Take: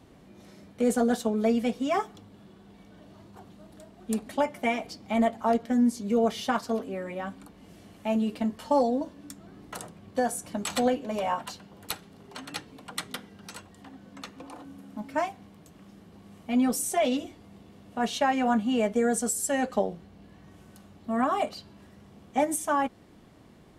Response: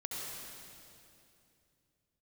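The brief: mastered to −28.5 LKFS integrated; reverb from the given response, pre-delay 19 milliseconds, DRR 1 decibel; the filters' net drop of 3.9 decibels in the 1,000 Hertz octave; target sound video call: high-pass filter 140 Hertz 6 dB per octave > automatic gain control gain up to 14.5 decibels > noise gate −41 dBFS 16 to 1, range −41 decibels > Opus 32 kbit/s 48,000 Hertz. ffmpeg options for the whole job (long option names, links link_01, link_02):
-filter_complex "[0:a]equalizer=frequency=1000:width_type=o:gain=-5.5,asplit=2[link_01][link_02];[1:a]atrim=start_sample=2205,adelay=19[link_03];[link_02][link_03]afir=irnorm=-1:irlink=0,volume=-2.5dB[link_04];[link_01][link_04]amix=inputs=2:normalize=0,highpass=frequency=140:poles=1,dynaudnorm=maxgain=14.5dB,agate=range=-41dB:threshold=-41dB:ratio=16,volume=-5.5dB" -ar 48000 -c:a libopus -b:a 32k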